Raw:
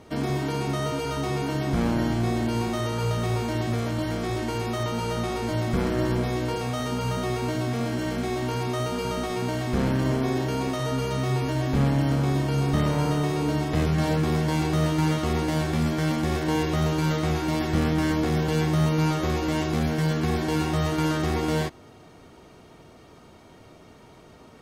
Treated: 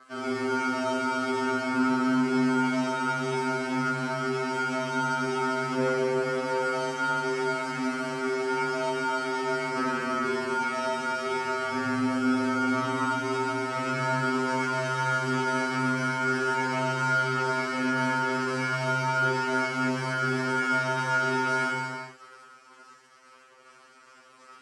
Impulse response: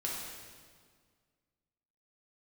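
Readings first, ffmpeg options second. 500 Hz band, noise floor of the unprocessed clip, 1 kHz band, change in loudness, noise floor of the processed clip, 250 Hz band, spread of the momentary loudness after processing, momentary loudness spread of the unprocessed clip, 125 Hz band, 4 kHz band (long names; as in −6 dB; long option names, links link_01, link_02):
−1.5 dB, −50 dBFS, +4.0 dB, −1.5 dB, −55 dBFS, −4.0 dB, 4 LU, 5 LU, −12.0 dB, −2.5 dB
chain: -filter_complex "[0:a]acrusher=bits=6:mix=0:aa=0.000001,aeval=exprs='val(0)*sin(2*PI*22*n/s)':channel_layout=same,highpass=330,equalizer=frequency=730:width_type=q:width=4:gain=-9,equalizer=frequency=1300:width_type=q:width=4:gain=9,equalizer=frequency=3600:width_type=q:width=4:gain=-10,equalizer=frequency=6600:width_type=q:width=4:gain=-5,lowpass=frequency=8100:width=0.5412,lowpass=frequency=8100:width=1.3066[link_01];[1:a]atrim=start_sample=2205,afade=type=out:start_time=0.34:duration=0.01,atrim=end_sample=15435,asetrate=27342,aresample=44100[link_02];[link_01][link_02]afir=irnorm=-1:irlink=0,afftfilt=real='re*2.45*eq(mod(b,6),0)':imag='im*2.45*eq(mod(b,6),0)':win_size=2048:overlap=0.75"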